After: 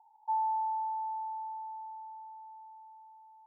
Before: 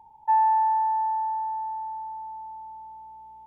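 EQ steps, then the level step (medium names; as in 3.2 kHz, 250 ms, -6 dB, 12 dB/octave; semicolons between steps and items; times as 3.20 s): cascade formant filter a; brick-wall FIR high-pass 450 Hz; 0.0 dB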